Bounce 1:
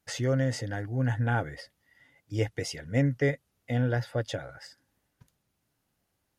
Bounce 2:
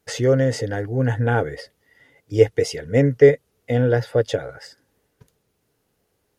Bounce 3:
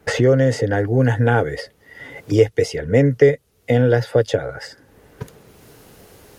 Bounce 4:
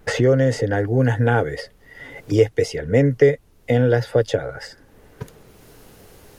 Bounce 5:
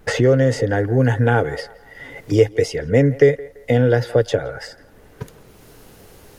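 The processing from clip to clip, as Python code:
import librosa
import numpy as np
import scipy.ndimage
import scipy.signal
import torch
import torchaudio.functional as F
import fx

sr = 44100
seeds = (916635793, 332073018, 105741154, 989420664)

y1 = fx.peak_eq(x, sr, hz=440.0, db=13.0, octaves=0.44)
y1 = y1 * 10.0 ** (6.0 / 20.0)
y2 = fx.band_squash(y1, sr, depth_pct=70)
y2 = y2 * 10.0 ** (3.0 / 20.0)
y3 = fx.dmg_noise_colour(y2, sr, seeds[0], colour='brown', level_db=-51.0)
y3 = y3 * 10.0 ** (-1.5 / 20.0)
y4 = fx.echo_banded(y3, sr, ms=169, feedback_pct=46, hz=960.0, wet_db=-17)
y4 = y4 * 10.0 ** (1.5 / 20.0)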